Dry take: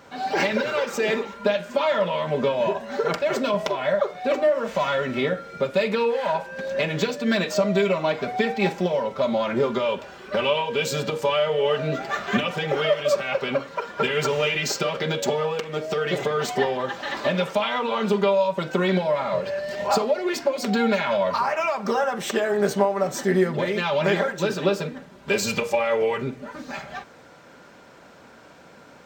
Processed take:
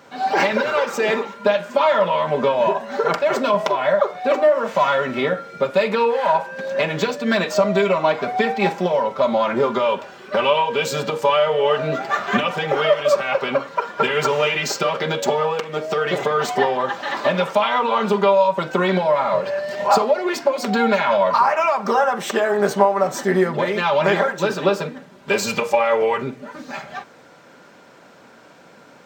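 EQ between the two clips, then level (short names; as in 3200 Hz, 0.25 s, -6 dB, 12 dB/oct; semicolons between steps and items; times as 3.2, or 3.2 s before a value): HPF 120 Hz; dynamic EQ 1000 Hz, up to +7 dB, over -36 dBFS, Q 1; +1.5 dB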